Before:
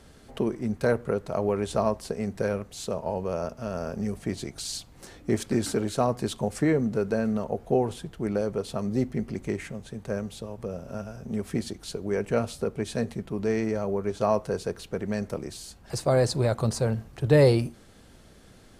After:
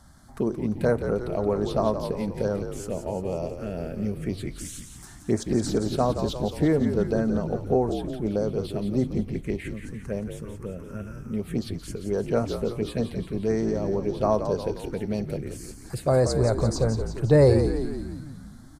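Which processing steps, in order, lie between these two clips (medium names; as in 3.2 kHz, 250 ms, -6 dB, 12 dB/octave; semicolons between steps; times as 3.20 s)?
touch-sensitive phaser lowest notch 420 Hz, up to 3.1 kHz, full sweep at -21 dBFS; frequency-shifting echo 174 ms, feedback 60%, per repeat -57 Hz, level -8 dB; trim +1.5 dB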